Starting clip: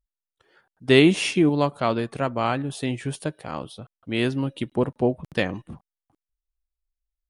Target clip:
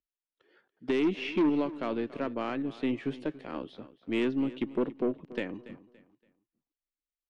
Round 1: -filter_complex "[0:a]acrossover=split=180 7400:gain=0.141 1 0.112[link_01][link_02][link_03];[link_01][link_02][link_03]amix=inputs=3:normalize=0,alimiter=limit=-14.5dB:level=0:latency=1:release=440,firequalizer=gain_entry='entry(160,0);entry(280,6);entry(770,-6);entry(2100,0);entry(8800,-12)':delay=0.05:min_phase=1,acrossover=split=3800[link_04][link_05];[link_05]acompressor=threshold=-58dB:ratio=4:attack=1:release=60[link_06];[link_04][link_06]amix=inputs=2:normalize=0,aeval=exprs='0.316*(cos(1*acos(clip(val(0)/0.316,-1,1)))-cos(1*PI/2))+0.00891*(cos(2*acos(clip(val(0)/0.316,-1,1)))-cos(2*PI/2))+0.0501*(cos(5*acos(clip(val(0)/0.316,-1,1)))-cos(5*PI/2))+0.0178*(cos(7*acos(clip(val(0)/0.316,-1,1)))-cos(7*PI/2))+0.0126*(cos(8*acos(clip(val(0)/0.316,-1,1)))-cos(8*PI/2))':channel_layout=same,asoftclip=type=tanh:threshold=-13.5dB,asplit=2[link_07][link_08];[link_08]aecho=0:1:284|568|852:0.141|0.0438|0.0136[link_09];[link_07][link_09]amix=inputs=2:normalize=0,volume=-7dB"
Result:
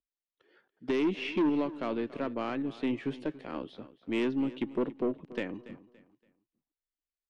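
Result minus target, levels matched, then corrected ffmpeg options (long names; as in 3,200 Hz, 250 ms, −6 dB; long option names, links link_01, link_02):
soft clipping: distortion +14 dB
-filter_complex "[0:a]acrossover=split=180 7400:gain=0.141 1 0.112[link_01][link_02][link_03];[link_01][link_02][link_03]amix=inputs=3:normalize=0,alimiter=limit=-14.5dB:level=0:latency=1:release=440,firequalizer=gain_entry='entry(160,0);entry(280,6);entry(770,-6);entry(2100,0);entry(8800,-12)':delay=0.05:min_phase=1,acrossover=split=3800[link_04][link_05];[link_05]acompressor=threshold=-58dB:ratio=4:attack=1:release=60[link_06];[link_04][link_06]amix=inputs=2:normalize=0,aeval=exprs='0.316*(cos(1*acos(clip(val(0)/0.316,-1,1)))-cos(1*PI/2))+0.00891*(cos(2*acos(clip(val(0)/0.316,-1,1)))-cos(2*PI/2))+0.0501*(cos(5*acos(clip(val(0)/0.316,-1,1)))-cos(5*PI/2))+0.0178*(cos(7*acos(clip(val(0)/0.316,-1,1)))-cos(7*PI/2))+0.0126*(cos(8*acos(clip(val(0)/0.316,-1,1)))-cos(8*PI/2))':channel_layout=same,asoftclip=type=tanh:threshold=-5.5dB,asplit=2[link_07][link_08];[link_08]aecho=0:1:284|568|852:0.141|0.0438|0.0136[link_09];[link_07][link_09]amix=inputs=2:normalize=0,volume=-7dB"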